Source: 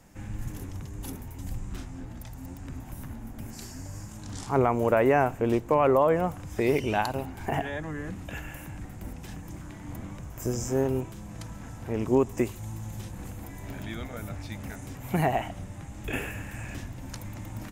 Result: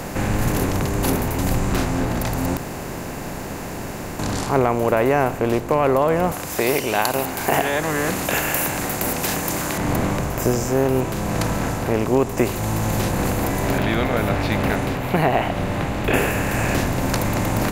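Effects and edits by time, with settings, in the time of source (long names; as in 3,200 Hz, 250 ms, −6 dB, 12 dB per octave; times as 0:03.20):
0:02.57–0:04.19: fill with room tone
0:06.32–0:09.78: RIAA equalisation recording
0:13.78–0:16.14: high shelf with overshoot 4,800 Hz −11 dB, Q 1.5
whole clip: compressor on every frequency bin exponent 0.6; speech leveller within 4 dB 0.5 s; level +5.5 dB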